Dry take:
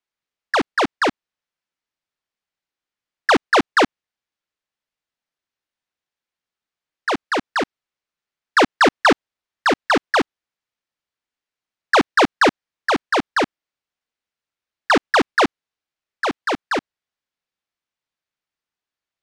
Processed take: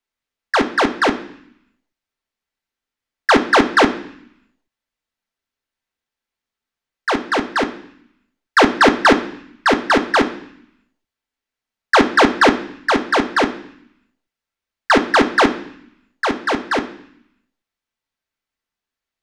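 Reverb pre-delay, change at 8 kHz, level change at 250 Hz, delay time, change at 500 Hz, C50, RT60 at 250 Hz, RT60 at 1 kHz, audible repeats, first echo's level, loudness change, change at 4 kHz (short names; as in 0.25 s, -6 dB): 3 ms, +2.0 dB, +4.5 dB, none, +3.0 dB, 12.5 dB, 0.95 s, 0.65 s, none, none, +3.0 dB, +2.5 dB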